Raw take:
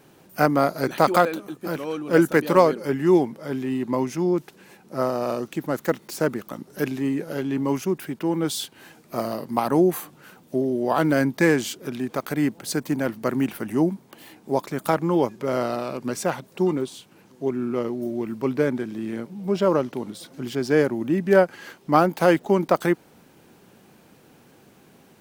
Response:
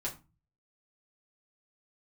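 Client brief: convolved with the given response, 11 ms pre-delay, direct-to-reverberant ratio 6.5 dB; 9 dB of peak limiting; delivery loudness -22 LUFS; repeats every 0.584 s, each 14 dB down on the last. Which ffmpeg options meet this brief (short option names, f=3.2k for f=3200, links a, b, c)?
-filter_complex "[0:a]alimiter=limit=-13dB:level=0:latency=1,aecho=1:1:584|1168:0.2|0.0399,asplit=2[a][b];[1:a]atrim=start_sample=2205,adelay=11[c];[b][c]afir=irnorm=-1:irlink=0,volume=-8.5dB[d];[a][d]amix=inputs=2:normalize=0,volume=2.5dB"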